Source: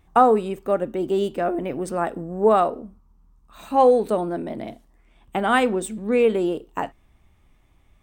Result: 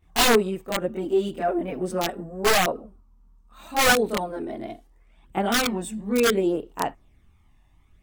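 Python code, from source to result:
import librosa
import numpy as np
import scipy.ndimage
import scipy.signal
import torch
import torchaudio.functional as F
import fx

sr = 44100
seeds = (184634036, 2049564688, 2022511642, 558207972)

y = (np.mod(10.0 ** (10.5 / 20.0) * x + 1.0, 2.0) - 1.0) / 10.0 ** (10.5 / 20.0)
y = fx.chorus_voices(y, sr, voices=2, hz=0.37, base_ms=24, depth_ms=3.1, mix_pct=70)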